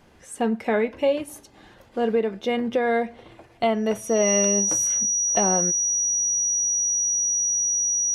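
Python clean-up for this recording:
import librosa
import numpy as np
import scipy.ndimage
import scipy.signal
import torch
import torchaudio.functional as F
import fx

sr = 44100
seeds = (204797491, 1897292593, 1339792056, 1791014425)

y = fx.notch(x, sr, hz=5800.0, q=30.0)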